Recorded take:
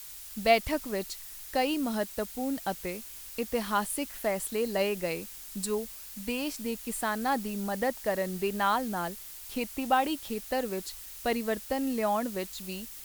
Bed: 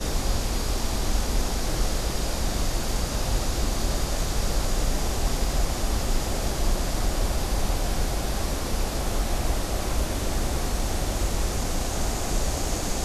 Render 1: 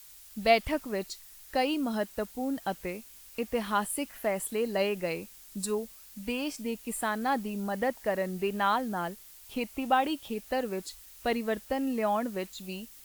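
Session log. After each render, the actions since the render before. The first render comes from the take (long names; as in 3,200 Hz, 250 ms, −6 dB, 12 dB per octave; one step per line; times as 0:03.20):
noise reduction from a noise print 7 dB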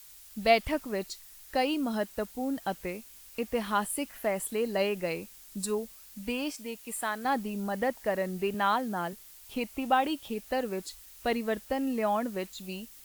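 0:06.51–0:07.25: low-shelf EQ 360 Hz −10 dB
0:08.54–0:09.13: high-pass filter 96 Hz 24 dB per octave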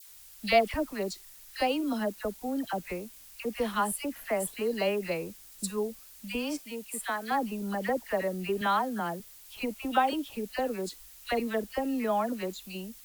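all-pass dispersion lows, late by 72 ms, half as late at 1,300 Hz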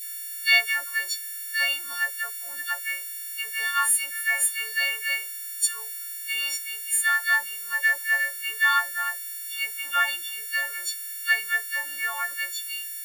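every partial snapped to a pitch grid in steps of 4 semitones
high-pass with resonance 1,700 Hz, resonance Q 4.8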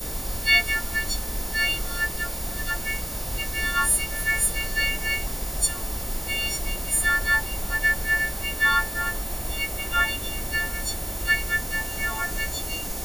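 mix in bed −7 dB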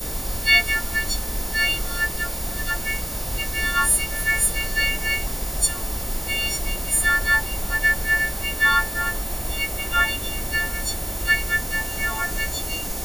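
level +2.5 dB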